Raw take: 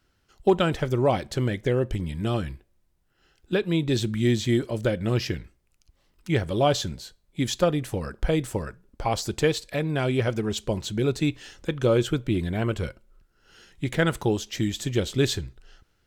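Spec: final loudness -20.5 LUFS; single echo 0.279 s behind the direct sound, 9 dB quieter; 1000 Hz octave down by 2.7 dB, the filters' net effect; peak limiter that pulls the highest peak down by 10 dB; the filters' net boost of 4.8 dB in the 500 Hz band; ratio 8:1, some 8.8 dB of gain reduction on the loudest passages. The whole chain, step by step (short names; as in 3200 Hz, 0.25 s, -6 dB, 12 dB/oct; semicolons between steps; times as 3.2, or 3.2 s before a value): bell 500 Hz +8 dB; bell 1000 Hz -9 dB; compressor 8:1, threshold -21 dBFS; limiter -22 dBFS; echo 0.279 s -9 dB; gain +11 dB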